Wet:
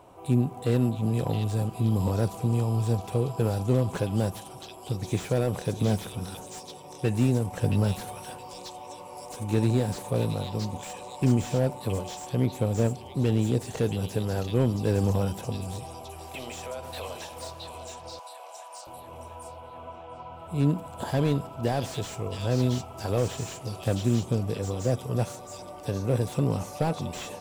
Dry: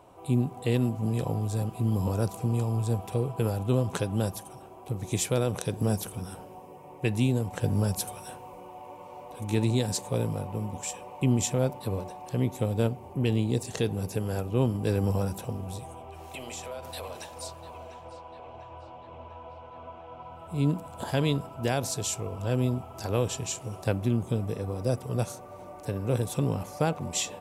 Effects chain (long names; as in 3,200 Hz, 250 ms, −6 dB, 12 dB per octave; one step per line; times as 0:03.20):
0:18.19–0:18.87: high-pass filter 580 Hz 24 dB per octave
echo through a band-pass that steps 669 ms, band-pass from 4,100 Hz, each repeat 0.7 octaves, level −2 dB
slew-rate limiting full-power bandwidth 44 Hz
level +2 dB